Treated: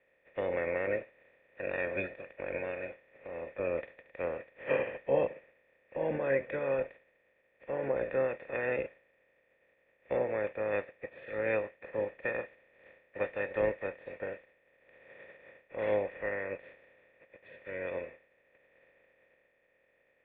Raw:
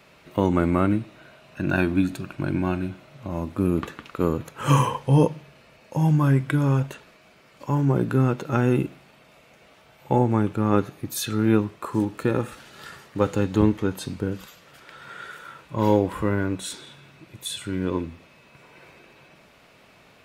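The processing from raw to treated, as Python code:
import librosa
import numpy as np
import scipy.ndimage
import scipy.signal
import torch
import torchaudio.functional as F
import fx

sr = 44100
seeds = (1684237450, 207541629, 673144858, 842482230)

y = fx.spec_clip(x, sr, under_db=26)
y = fx.formant_cascade(y, sr, vowel='e')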